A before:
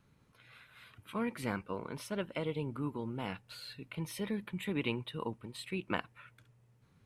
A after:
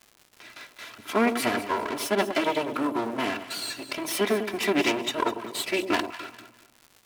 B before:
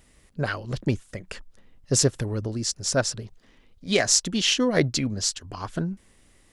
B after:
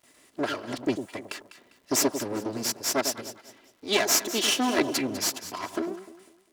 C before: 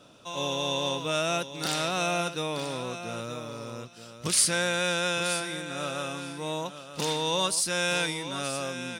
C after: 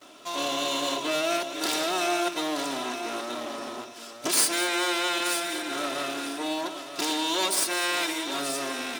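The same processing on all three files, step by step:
lower of the sound and its delayed copy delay 3 ms
noise gate with hold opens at −48 dBFS
high-pass filter 250 Hz 12 dB per octave
in parallel at +2 dB: downward compressor, threshold −36 dBFS
on the sum: surface crackle 170 per second −49 dBFS
on a send: delay that swaps between a low-pass and a high-pass 100 ms, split 890 Hz, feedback 55%, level −8 dB
on the sum: loudness normalisation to −27 LKFS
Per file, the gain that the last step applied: +10.0, −2.5, 0.0 decibels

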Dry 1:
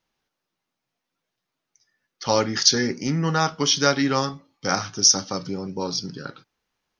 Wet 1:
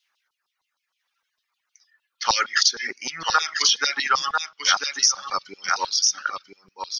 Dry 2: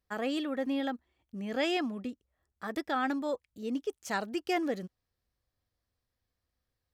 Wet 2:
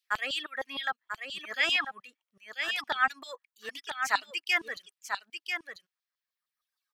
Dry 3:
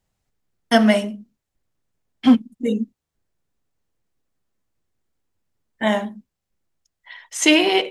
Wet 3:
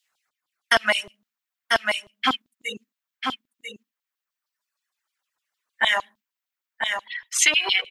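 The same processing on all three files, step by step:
auto-filter high-pass saw down 6.5 Hz 990–3,700 Hz
on a send: single-tap delay 992 ms −6.5 dB
on the sum: downward compressor 16 to 1, threshold −19 dBFS
reverb reduction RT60 1.6 s
low-shelf EQ 350 Hz +10.5 dB
level +4.5 dB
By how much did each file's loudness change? 0.0, +3.0, −4.5 LU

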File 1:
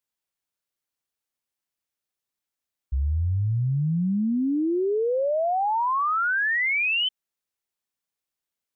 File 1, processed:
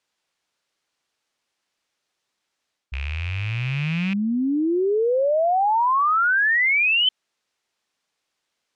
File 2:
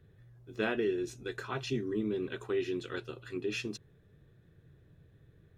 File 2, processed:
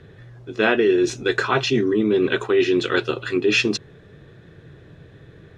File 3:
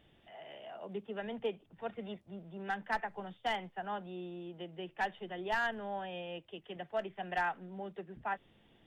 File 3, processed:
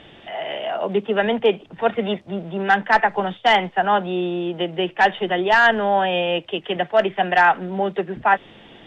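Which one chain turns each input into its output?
loose part that buzzes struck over −28 dBFS, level −24 dBFS
reversed playback
downward compressor 4 to 1, threshold −34 dBFS
reversed playback
low-pass filter 5,900 Hz 12 dB per octave
low-shelf EQ 160 Hz −11 dB
loudness normalisation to −20 LKFS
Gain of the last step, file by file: +14.5, +21.0, +23.0 decibels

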